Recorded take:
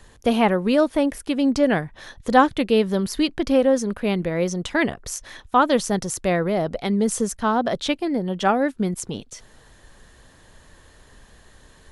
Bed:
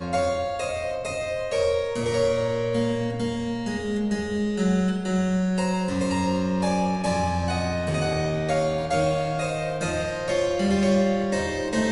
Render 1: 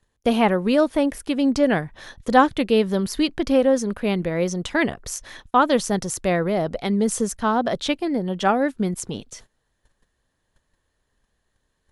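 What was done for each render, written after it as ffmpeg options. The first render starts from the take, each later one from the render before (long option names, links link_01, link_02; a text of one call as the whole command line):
ffmpeg -i in.wav -af "agate=range=-22dB:threshold=-43dB:ratio=16:detection=peak" out.wav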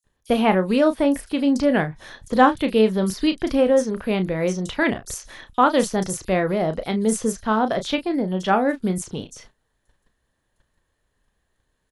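ffmpeg -i in.wav -filter_complex "[0:a]asplit=2[link_01][link_02];[link_02]adelay=32,volume=-9.5dB[link_03];[link_01][link_03]amix=inputs=2:normalize=0,acrossover=split=5400[link_04][link_05];[link_04]adelay=40[link_06];[link_06][link_05]amix=inputs=2:normalize=0" out.wav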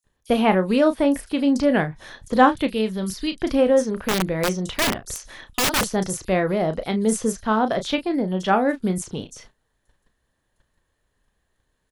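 ffmpeg -i in.wav -filter_complex "[0:a]asettb=1/sr,asplit=3[link_01][link_02][link_03];[link_01]atrim=end=2.674[link_04];[link_02]atrim=start=2.67:end=3.41,asetpts=PTS-STARTPTS,afade=type=in:duration=0.004:curve=qsin,afade=type=out:start_time=0.736:duration=0.004:curve=qsin,equalizer=frequency=600:width=0.34:gain=-8[link_05];[link_03]atrim=start=3.406[link_06];[link_04][link_05]acrossfade=duration=0.004:curve1=hsin:curve2=qsin[link_07];[link_07][link_06]acrossfade=duration=0.004:curve1=qsin:curve2=hsin,asettb=1/sr,asplit=3[link_08][link_09][link_10];[link_08]atrim=end=3.914[link_11];[link_09]atrim=start=3.91:end=5.9,asetpts=PTS-STARTPTS,afade=type=in:duration=0.004:curve=qsin,afade=type=out:start_time=1.986:duration=0.004:curve=qsin,aeval=exprs='(mod(5.31*val(0)+1,2)-1)/5.31':channel_layout=same[link_12];[link_10]atrim=start=5.896[link_13];[link_11][link_12]acrossfade=duration=0.004:curve1=hsin:curve2=qsin[link_14];[link_14][link_13]acrossfade=duration=0.004:curve1=qsin:curve2=hsin" out.wav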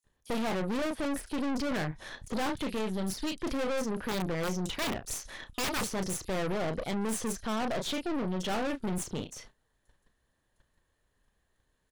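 ffmpeg -i in.wav -af "aeval=exprs='(tanh(31.6*val(0)+0.65)-tanh(0.65))/31.6':channel_layout=same" out.wav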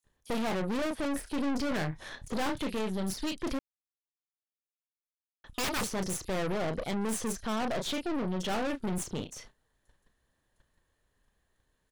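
ffmpeg -i in.wav -filter_complex "[0:a]asettb=1/sr,asplit=3[link_01][link_02][link_03];[link_01]atrim=end=1.124[link_04];[link_02]atrim=start=1.12:end=2.67,asetpts=PTS-STARTPTS,afade=type=in:duration=0.004:curve=qsin,afade=type=out:start_time=1.546:duration=0.004:curve=qsin,asplit=2[link_05][link_06];[link_06]adelay=25,volume=-13dB[link_07];[link_05][link_07]amix=inputs=2:normalize=0,atrim=end_sample=68355[link_08];[link_03]atrim=start=2.666[link_09];[link_04][link_08]acrossfade=duration=0.004:curve1=hsin:curve2=qsin[link_10];[link_10][link_09]acrossfade=duration=0.004:curve1=qsin:curve2=hsin,asplit=3[link_11][link_12][link_13];[link_11]atrim=end=3.59,asetpts=PTS-STARTPTS,afade=type=out:start_time=3.586:duration=0.004:curve=hsin[link_14];[link_12]atrim=start=3.59:end=5.44,asetpts=PTS-STARTPTS,volume=0[link_15];[link_13]atrim=start=5.44,asetpts=PTS-STARTPTS,afade=type=in:duration=0.004:curve=hsin[link_16];[link_14][link_15][link_16]concat=n=3:v=0:a=1" out.wav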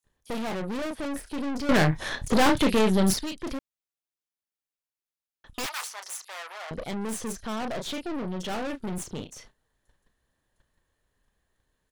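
ffmpeg -i in.wav -filter_complex "[0:a]asettb=1/sr,asplit=3[link_01][link_02][link_03];[link_01]atrim=end=5.664[link_04];[link_02]atrim=start=5.66:end=6.71,asetpts=PTS-STARTPTS,afade=type=in:duration=0.004:curve=qsin,afade=type=out:start_time=1.046:duration=0.004:curve=qsin,highpass=frequency=820:width=0.5412,highpass=frequency=820:width=1.3066[link_05];[link_03]atrim=start=6.706[link_06];[link_04][link_05]acrossfade=duration=0.004:curve1=hsin:curve2=qsin[link_07];[link_07][link_06]acrossfade=duration=0.004:curve1=qsin:curve2=hsin,asplit=3[link_08][link_09][link_10];[link_08]atrim=end=1.692[link_11];[link_09]atrim=start=1.688:end=3.192,asetpts=PTS-STARTPTS,volume=11.5dB[link_12];[link_10]atrim=start=3.188[link_13];[link_11][link_12]acrossfade=duration=0.004:curve1=hsin:curve2=hsin[link_14];[link_14][link_13]acrossfade=duration=0.004:curve1=hsin:curve2=hsin" out.wav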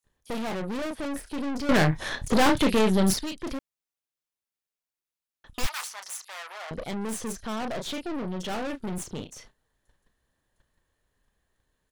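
ffmpeg -i in.wav -filter_complex "[0:a]asplit=3[link_01][link_02][link_03];[link_01]afade=type=out:start_time=5.62:duration=0.02[link_04];[link_02]asubboost=boost=10:cutoff=110,afade=type=in:start_time=5.62:duration=0.02,afade=type=out:start_time=6.47:duration=0.02[link_05];[link_03]afade=type=in:start_time=6.47:duration=0.02[link_06];[link_04][link_05][link_06]amix=inputs=3:normalize=0" out.wav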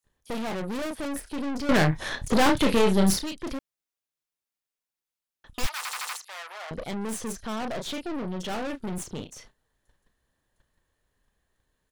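ffmpeg -i in.wav -filter_complex "[0:a]asettb=1/sr,asplit=3[link_01][link_02][link_03];[link_01]atrim=end=0.584[link_04];[link_02]atrim=start=0.58:end=1.2,asetpts=PTS-STARTPTS,afade=type=in:duration=0.004:curve=qsin,afade=type=out:start_time=0.616:duration=0.004:curve=qsin,highshelf=frequency=8200:gain=7.5[link_05];[link_03]atrim=start=1.196[link_06];[link_04][link_05]acrossfade=duration=0.004:curve1=hsin:curve2=qsin[link_07];[link_07][link_06]acrossfade=duration=0.004:curve1=qsin:curve2=hsin,asettb=1/sr,asplit=3[link_08][link_09][link_10];[link_08]atrim=end=2.594[link_11];[link_09]atrim=start=2.59:end=3.24,asetpts=PTS-STARTPTS,afade=type=in:duration=0.004:curve=qsin,afade=type=out:start_time=0.646:duration=0.004:curve=qsin,asplit=2[link_12][link_13];[link_13]adelay=30,volume=-7.5dB[link_14];[link_12][link_14]amix=inputs=2:normalize=0,atrim=end_sample=28665[link_15];[link_10]atrim=start=3.236[link_16];[link_11][link_15]acrossfade=duration=0.004:curve1=hsin:curve2=qsin[link_17];[link_17][link_16]acrossfade=duration=0.004:curve1=qsin:curve2=hsin,asplit=6[link_18][link_19][link_20][link_21][link_22][link_23];[link_18]atrim=end=5.852[link_24];[link_19]atrim=start=5.768:end=5.852[link_25];[link_20]atrim=start=5.768:end=5.852[link_26];[link_21]atrim=start=5.768:end=5.852[link_27];[link_22]atrim=start=5.768:end=5.852[link_28];[link_23]atrim=start=6.168[link_29];[link_24][link_25]acrossfade=duration=0.004:curve1=hsin:curve2=hsin[link_30];[link_30][link_26]acrossfade=duration=0.004:curve1=hsin:curve2=hsin[link_31];[link_31][link_27]acrossfade=duration=0.004:curve1=hsin:curve2=hsin[link_32];[link_32][link_28]acrossfade=duration=0.004:curve1=hsin:curve2=hsin[link_33];[link_33][link_29]acrossfade=duration=0.004:curve1=hsin:curve2=hsin" out.wav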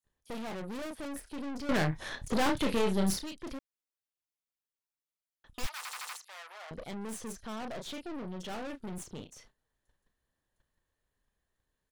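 ffmpeg -i in.wav -af "volume=-8dB" out.wav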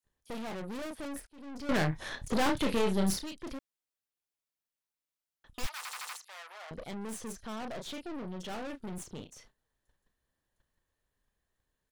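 ffmpeg -i in.wav -filter_complex "[0:a]asplit=2[link_01][link_02];[link_01]atrim=end=1.27,asetpts=PTS-STARTPTS,afade=type=out:start_time=1.266:duration=0.004:curve=hsin[link_03];[link_02]atrim=start=1.27,asetpts=PTS-STARTPTS,afade=type=in:duration=0.45[link_04];[link_03][link_04]concat=n=2:v=0:a=1" out.wav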